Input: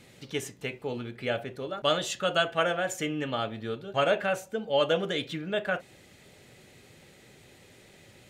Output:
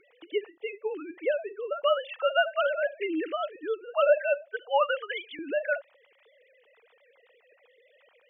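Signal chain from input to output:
three sine waves on the formant tracks
0:04.46–0:05.39: high-pass with resonance 970 Hz, resonance Q 2.3
level +2 dB

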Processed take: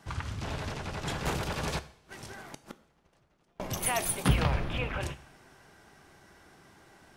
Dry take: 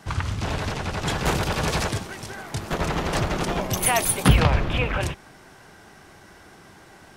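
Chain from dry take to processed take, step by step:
0:01.78–0:03.60: gate with flip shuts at −17 dBFS, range −36 dB
coupled-rooms reverb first 0.54 s, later 2.3 s, from −21 dB, DRR 11.5 dB
level −9 dB

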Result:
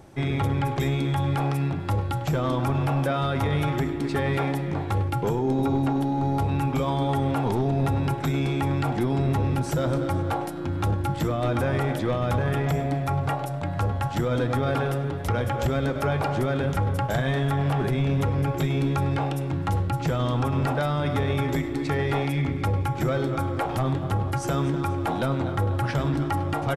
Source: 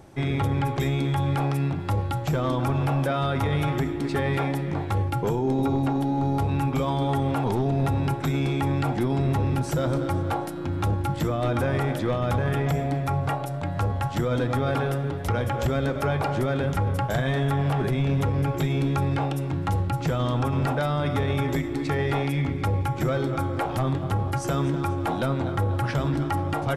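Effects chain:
far-end echo of a speakerphone 100 ms, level −13 dB

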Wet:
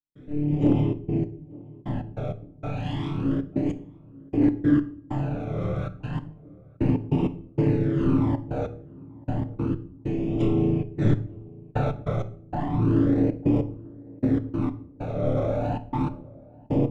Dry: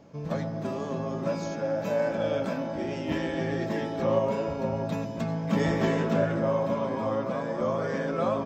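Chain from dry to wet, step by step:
lower of the sound and its delayed copy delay 3.4 ms
parametric band 740 Hz +6.5 dB 2.6 octaves
in parallel at +0.5 dB: brickwall limiter −17.5 dBFS, peak gain reduction 8.5 dB
on the sum: all-pass phaser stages 12, 0.62 Hz, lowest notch 590–3,100 Hz
tuned comb filter 74 Hz, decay 0.24 s, harmonics all, mix 90%
hard clipping −17.5 dBFS, distortion −29 dB
gate pattern ".xxxxx.x....x.x." 194 BPM −60 dB
on a send: tape delay 446 ms, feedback 54%, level −20 dB, low-pass 1,000 Hz
on the sum: rectangular room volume 140 cubic metres, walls furnished, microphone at 0.41 metres
wrong playback speed 15 ips tape played at 7.5 ips
level +6 dB

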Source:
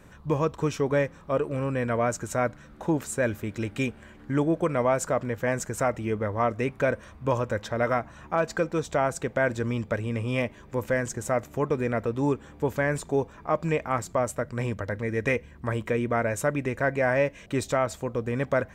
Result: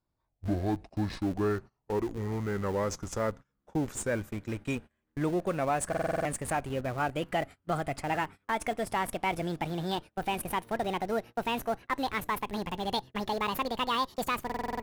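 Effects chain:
gliding playback speed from 60% → 193%
dynamic equaliser 9,200 Hz, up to +5 dB, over −55 dBFS, Q 2
noise gate −36 dBFS, range −25 dB
in parallel at −10 dB: comparator with hysteresis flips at −29.5 dBFS
on the sum: buffer that repeats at 0:05.88/0:14.45, samples 2,048, times 7
level −6.5 dB

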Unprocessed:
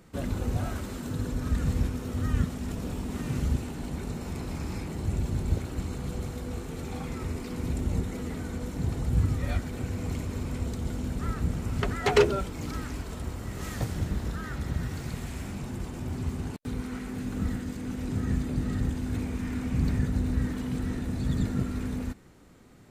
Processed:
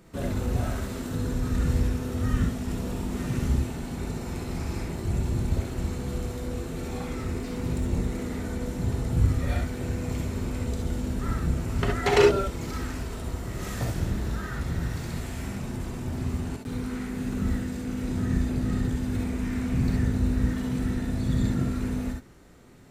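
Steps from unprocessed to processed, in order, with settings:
0:07.14–0:08.15: phase distortion by the signal itself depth 0.071 ms
reverb whose tail is shaped and stops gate 90 ms rising, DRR 0.5 dB

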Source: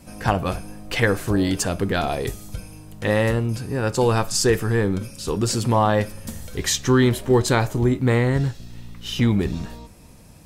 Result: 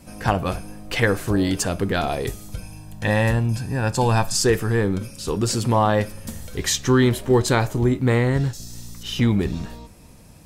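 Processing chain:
0:02.62–0:04.34: comb filter 1.2 ms, depth 50%
0:08.53–0:09.03: high shelf with overshoot 4,200 Hz +14 dB, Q 1.5

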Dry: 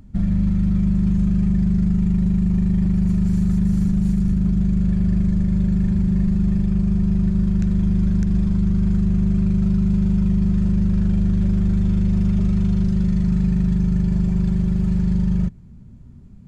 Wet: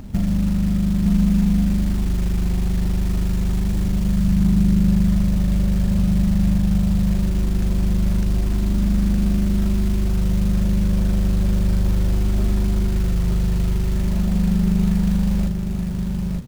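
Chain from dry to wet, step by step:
parametric band 630 Hz +8 dB 2 octaves
downward compressor 2.5 to 1, threshold −29 dBFS, peak gain reduction 10.5 dB
log-companded quantiser 6 bits
double-tracking delay 36 ms −12 dB
single-tap delay 913 ms −4 dB
level +7.5 dB

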